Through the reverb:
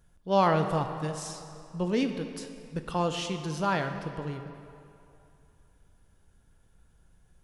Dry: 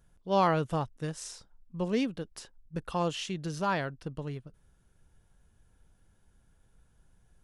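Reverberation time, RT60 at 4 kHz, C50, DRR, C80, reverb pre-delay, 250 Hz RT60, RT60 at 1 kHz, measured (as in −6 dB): 2.7 s, 1.9 s, 8.0 dB, 6.5 dB, 8.5 dB, 6 ms, 2.5 s, 2.8 s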